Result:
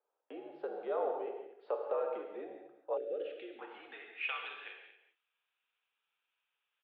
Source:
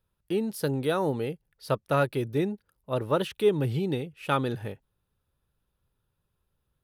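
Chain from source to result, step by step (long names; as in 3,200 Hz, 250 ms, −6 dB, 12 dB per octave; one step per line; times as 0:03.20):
brickwall limiter −18.5 dBFS, peak gain reduction 6.5 dB
downward compressor 2.5 to 1, threshold −37 dBFS, peak gain reduction 10 dB
band-pass filter sweep 660 Hz → 2,700 Hz, 0:03.15–0:04.36
on a send: single-tap delay 229 ms −14 dB
on the sum: reverb whose tail is shaped and stops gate 200 ms flat, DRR 2 dB
single-sideband voice off tune −66 Hz 520–3,500 Hz
0:02.97–0:03.59: Butterworth band-reject 970 Hz, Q 0.7
level +7.5 dB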